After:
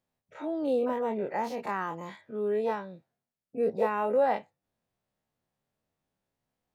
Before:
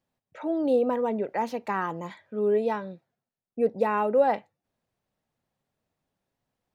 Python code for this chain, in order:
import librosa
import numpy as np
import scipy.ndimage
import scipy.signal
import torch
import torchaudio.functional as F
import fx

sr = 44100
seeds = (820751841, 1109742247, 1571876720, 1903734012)

y = fx.spec_dilate(x, sr, span_ms=60)
y = y * librosa.db_to_amplitude(-6.5)